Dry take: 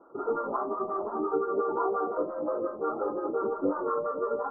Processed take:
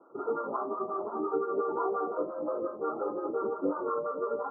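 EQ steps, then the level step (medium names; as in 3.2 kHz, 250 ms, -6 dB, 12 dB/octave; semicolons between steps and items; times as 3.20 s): Chebyshev band-pass 110–1400 Hz, order 3; -2.0 dB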